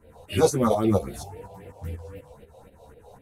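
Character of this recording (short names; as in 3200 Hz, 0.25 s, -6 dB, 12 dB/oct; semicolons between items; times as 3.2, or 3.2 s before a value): phasing stages 4, 3.8 Hz, lowest notch 260–1100 Hz; tremolo saw up 4.1 Hz, depth 70%; a shimmering, thickened sound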